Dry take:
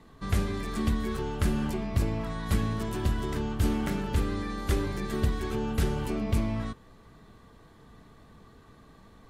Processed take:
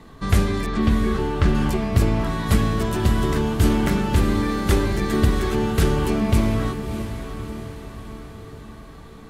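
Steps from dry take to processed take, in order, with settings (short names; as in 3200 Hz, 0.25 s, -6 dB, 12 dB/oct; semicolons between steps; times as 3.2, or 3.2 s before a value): 0.66–1.55 air absorption 130 m; diffused feedback echo 0.658 s, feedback 54%, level -9.5 dB; gain +9 dB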